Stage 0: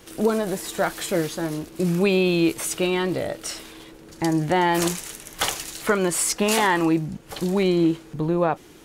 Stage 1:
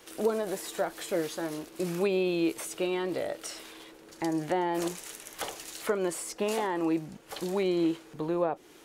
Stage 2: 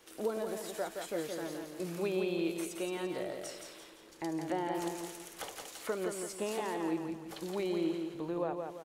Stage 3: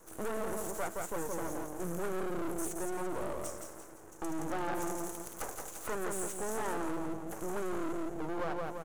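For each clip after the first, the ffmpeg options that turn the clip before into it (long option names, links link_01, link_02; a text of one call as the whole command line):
ffmpeg -i in.wav -filter_complex "[0:a]bass=frequency=250:gain=-13,treble=frequency=4000:gain=-1,acrossover=split=680[link_01][link_02];[link_02]acompressor=threshold=-33dB:ratio=6[link_03];[link_01][link_03]amix=inputs=2:normalize=0,volume=-3.5dB" out.wav
ffmpeg -i in.wav -af "aecho=1:1:170|340|510|680|850:0.562|0.225|0.09|0.036|0.0144,volume=-7dB" out.wav
ffmpeg -i in.wav -filter_complex "[0:a]acrossover=split=120|1100|6500[link_01][link_02][link_03][link_04];[link_02]aeval=exprs='clip(val(0),-1,0.0112)':channel_layout=same[link_05];[link_01][link_05][link_03][link_04]amix=inputs=4:normalize=0,asuperstop=centerf=3100:order=20:qfactor=0.71,aeval=exprs='max(val(0),0)':channel_layout=same,volume=8.5dB" out.wav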